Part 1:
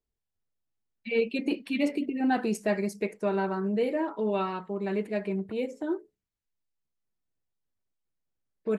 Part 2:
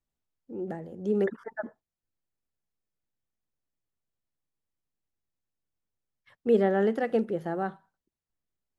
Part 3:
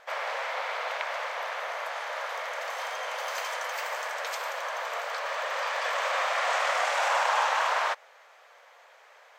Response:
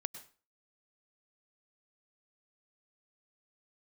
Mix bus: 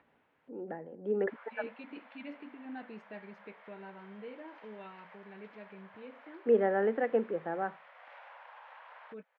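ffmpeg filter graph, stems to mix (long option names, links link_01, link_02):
-filter_complex "[0:a]adelay=450,volume=-15.5dB[link_01];[1:a]acrossover=split=260 2200:gain=0.178 1 0.0794[link_02][link_03][link_04];[link_02][link_03][link_04]amix=inputs=3:normalize=0,volume=2dB[link_05];[2:a]highpass=450,highshelf=frequency=2500:gain=-11,acompressor=threshold=-34dB:ratio=6,adelay=1200,volume=-17dB[link_06];[link_01][link_05][link_06]amix=inputs=3:normalize=0,equalizer=frequency=670:width=2.3:gain=-5,acompressor=mode=upward:threshold=-44dB:ratio=2.5,highpass=120,equalizer=frequency=200:width_type=q:width=4:gain=-4,equalizer=frequency=360:width_type=q:width=4:gain=-8,equalizer=frequency=1200:width_type=q:width=4:gain=-5,lowpass=frequency=3300:width=0.5412,lowpass=frequency=3300:width=1.3066"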